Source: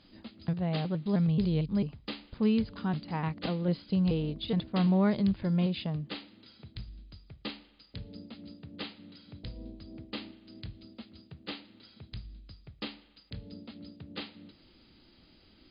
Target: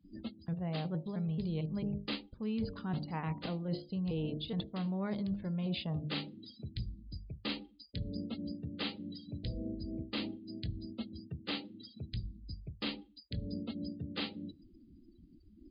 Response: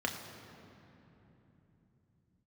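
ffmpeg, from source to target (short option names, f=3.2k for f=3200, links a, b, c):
-af "bandreject=f=50.53:t=h:w=4,bandreject=f=101.06:t=h:w=4,bandreject=f=151.59:t=h:w=4,bandreject=f=202.12:t=h:w=4,bandreject=f=252.65:t=h:w=4,bandreject=f=303.18:t=h:w=4,bandreject=f=353.71:t=h:w=4,bandreject=f=404.24:t=h:w=4,bandreject=f=454.77:t=h:w=4,bandreject=f=505.3:t=h:w=4,bandreject=f=555.83:t=h:w=4,bandreject=f=606.36:t=h:w=4,bandreject=f=656.89:t=h:w=4,bandreject=f=707.42:t=h:w=4,bandreject=f=757.95:t=h:w=4,bandreject=f=808.48:t=h:w=4,bandreject=f=859.01:t=h:w=4,bandreject=f=909.54:t=h:w=4,bandreject=f=960.07:t=h:w=4,afftdn=nr=36:nf=-51,areverse,acompressor=threshold=-41dB:ratio=10,areverse,volume=7.5dB"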